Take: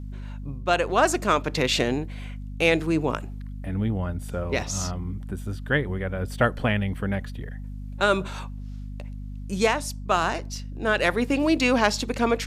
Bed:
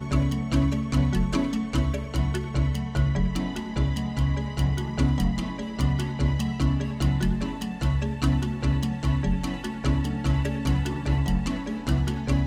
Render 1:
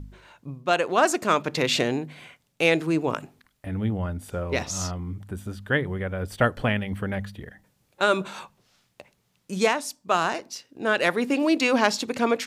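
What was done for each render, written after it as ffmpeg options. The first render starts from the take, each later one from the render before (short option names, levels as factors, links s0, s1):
-af "bandreject=f=50:t=h:w=4,bandreject=f=100:t=h:w=4,bandreject=f=150:t=h:w=4,bandreject=f=200:t=h:w=4,bandreject=f=250:t=h:w=4"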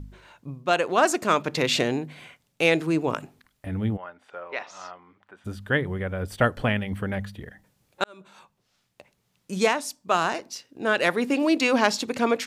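-filter_complex "[0:a]asplit=3[s0][s1][s2];[s0]afade=t=out:st=3.96:d=0.02[s3];[s1]highpass=780,lowpass=2300,afade=t=in:st=3.96:d=0.02,afade=t=out:st=5.44:d=0.02[s4];[s2]afade=t=in:st=5.44:d=0.02[s5];[s3][s4][s5]amix=inputs=3:normalize=0,asplit=2[s6][s7];[s6]atrim=end=8.04,asetpts=PTS-STARTPTS,afade=t=out:st=8.036:d=0.004:c=hsin[s8];[s7]atrim=start=8.04,asetpts=PTS-STARTPTS,afade=t=in:d=1.48[s9];[s8][s9]concat=n=2:v=0:a=1"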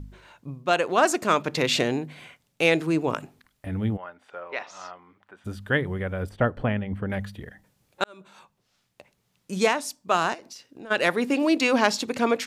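-filter_complex "[0:a]asettb=1/sr,asplit=3[s0][s1][s2];[s0]atrim=end=6.294[s3];[s1]atrim=start=6.29:end=7.1,asetpts=PTS-STARTPTS,afade=t=in:d=0.004:c=qsin,afade=t=out:st=0.806:d=0.004:c=qsin,lowpass=f=1100:p=1[s4];[s2]atrim=start=7.096[s5];[s3][s4]acrossfade=d=0.004:c1=hsin:c2=qsin[s6];[s6][s5]acrossfade=d=0.004:c1=qsin:c2=hsin,asplit=3[s7][s8][s9];[s7]afade=t=out:st=10.33:d=0.02[s10];[s8]acompressor=threshold=0.0126:ratio=8:attack=3.2:release=140:knee=1:detection=peak,afade=t=in:st=10.33:d=0.02,afade=t=out:st=10.9:d=0.02[s11];[s9]afade=t=in:st=10.9:d=0.02[s12];[s10][s11][s12]amix=inputs=3:normalize=0"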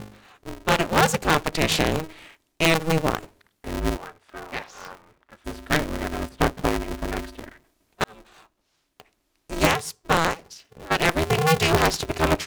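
-af "aeval=exprs='0.501*(cos(1*acos(clip(val(0)/0.501,-1,1)))-cos(1*PI/2))+0.0794*(cos(6*acos(clip(val(0)/0.501,-1,1)))-cos(6*PI/2))':c=same,aeval=exprs='val(0)*sgn(sin(2*PI*160*n/s))':c=same"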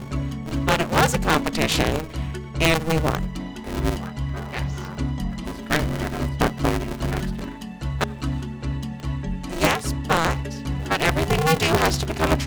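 -filter_complex "[1:a]volume=0.668[s0];[0:a][s0]amix=inputs=2:normalize=0"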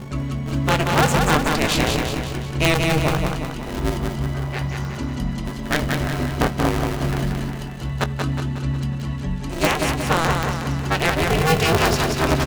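-filter_complex "[0:a]asplit=2[s0][s1];[s1]adelay=21,volume=0.211[s2];[s0][s2]amix=inputs=2:normalize=0,aecho=1:1:182|364|546|728|910|1092|1274:0.631|0.334|0.177|0.0939|0.0498|0.0264|0.014"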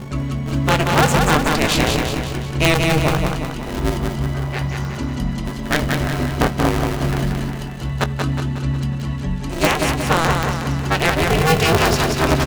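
-af "volume=1.33,alimiter=limit=0.794:level=0:latency=1"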